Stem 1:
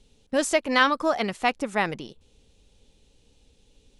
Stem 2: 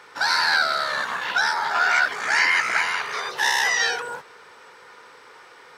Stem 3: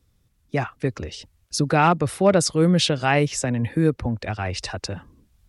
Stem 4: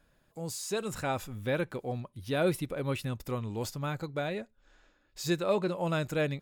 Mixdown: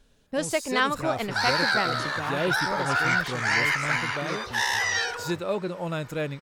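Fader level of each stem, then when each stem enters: -4.0, -4.5, -17.0, 0.0 dB; 0.00, 1.15, 0.45, 0.00 s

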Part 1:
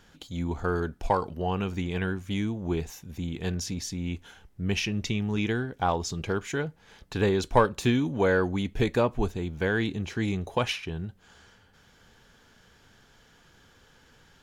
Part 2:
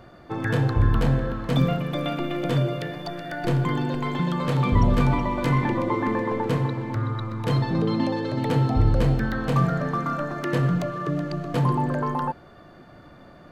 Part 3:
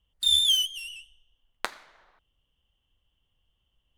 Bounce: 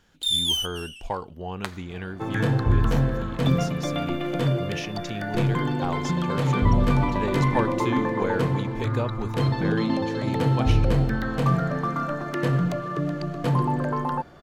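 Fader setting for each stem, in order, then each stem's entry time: -5.0, -0.5, -2.0 dB; 0.00, 1.90, 0.00 s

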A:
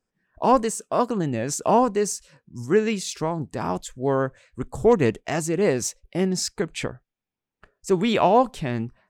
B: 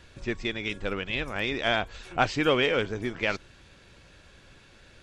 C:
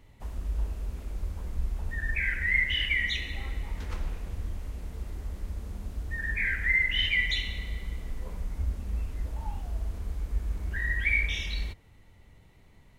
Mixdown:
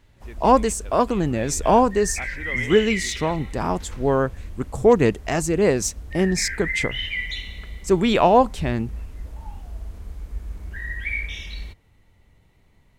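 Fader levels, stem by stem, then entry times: +2.5, -13.5, -1.5 dB; 0.00, 0.00, 0.00 s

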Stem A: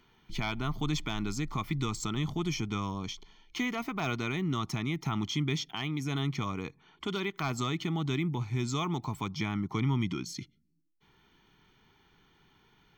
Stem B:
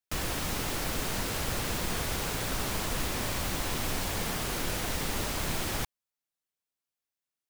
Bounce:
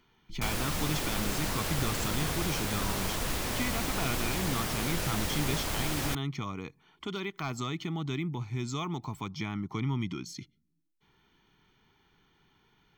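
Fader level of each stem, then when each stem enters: -2.5, -0.5 dB; 0.00, 0.30 s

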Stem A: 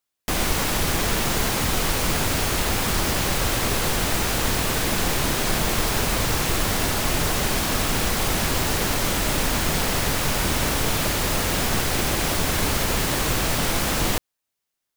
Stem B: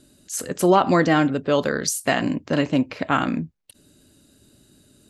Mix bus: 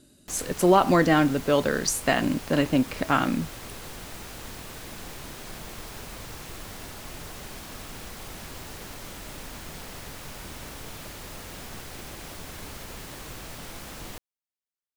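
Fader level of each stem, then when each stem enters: -17.5, -2.0 dB; 0.00, 0.00 s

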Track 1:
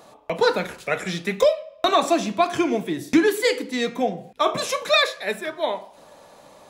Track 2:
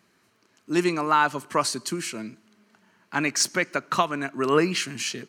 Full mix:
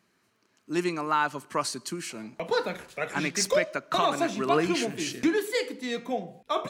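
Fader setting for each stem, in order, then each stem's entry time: -7.5, -5.0 dB; 2.10, 0.00 s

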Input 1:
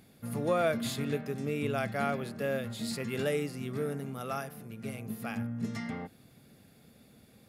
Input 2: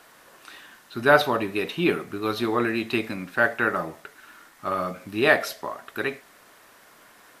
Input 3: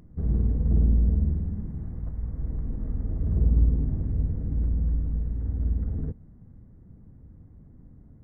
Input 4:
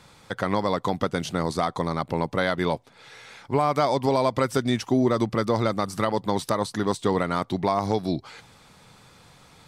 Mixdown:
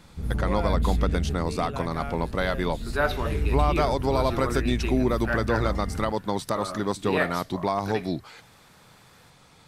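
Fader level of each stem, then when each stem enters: -5.0, -8.0, -4.0, -2.5 dB; 0.00, 1.90, 0.00, 0.00 s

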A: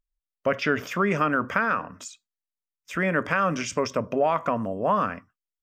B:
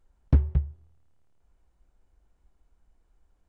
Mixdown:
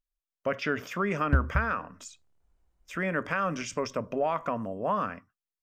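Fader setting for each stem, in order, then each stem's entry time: -5.5, -4.5 dB; 0.00, 1.00 s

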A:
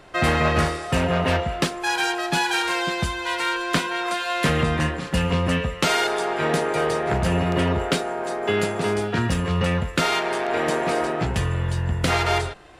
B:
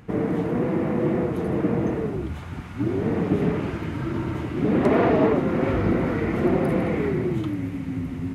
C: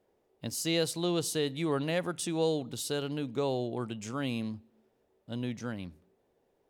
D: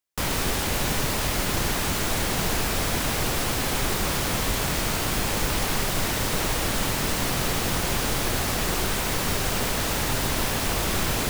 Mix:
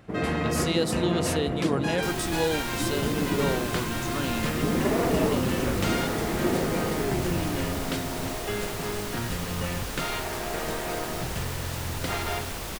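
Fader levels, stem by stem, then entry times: -10.0, -6.0, +2.0, -9.5 dB; 0.00, 0.00, 0.00, 1.85 s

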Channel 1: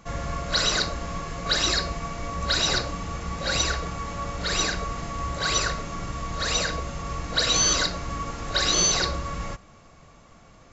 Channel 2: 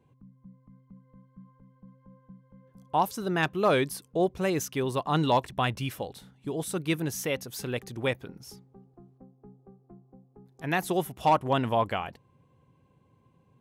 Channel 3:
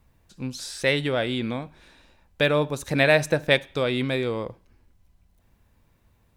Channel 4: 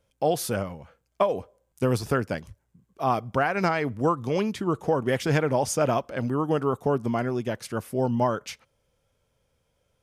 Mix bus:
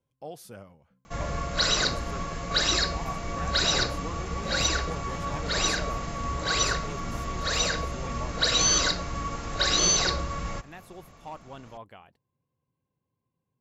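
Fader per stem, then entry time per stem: -1.0 dB, -18.5 dB, off, -17.0 dB; 1.05 s, 0.00 s, off, 0.00 s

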